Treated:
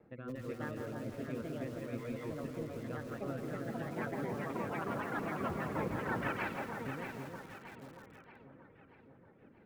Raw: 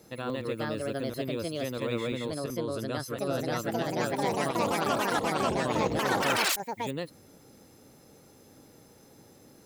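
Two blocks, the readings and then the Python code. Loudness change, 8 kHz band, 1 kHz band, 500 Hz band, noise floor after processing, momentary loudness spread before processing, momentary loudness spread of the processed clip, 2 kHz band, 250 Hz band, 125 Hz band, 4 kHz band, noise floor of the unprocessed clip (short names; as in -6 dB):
-10.0 dB, -21.5 dB, -10.5 dB, -10.0 dB, -61 dBFS, 8 LU, 15 LU, -8.5 dB, -7.0 dB, -5.5 dB, -20.5 dB, -56 dBFS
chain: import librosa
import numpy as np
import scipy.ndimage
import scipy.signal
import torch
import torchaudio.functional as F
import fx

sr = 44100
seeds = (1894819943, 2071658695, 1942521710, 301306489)

p1 = fx.dereverb_blind(x, sr, rt60_s=0.96)
p2 = scipy.signal.sosfilt(scipy.signal.butter(4, 2100.0, 'lowpass', fs=sr, output='sos'), p1)
p3 = fx.dynamic_eq(p2, sr, hz=590.0, q=0.72, threshold_db=-42.0, ratio=4.0, max_db=-6)
p4 = fx.rotary_switch(p3, sr, hz=1.2, then_hz=6.3, switch_at_s=4.16)
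p5 = p4 + fx.echo_alternate(p4, sr, ms=316, hz=1100.0, feedback_pct=69, wet_db=-4.0, dry=0)
p6 = fx.rev_freeverb(p5, sr, rt60_s=4.1, hf_ratio=0.35, predelay_ms=60, drr_db=15.5)
p7 = fx.echo_crushed(p6, sr, ms=167, feedback_pct=35, bits=8, wet_db=-6.5)
y = p7 * 10.0 ** (-3.5 / 20.0)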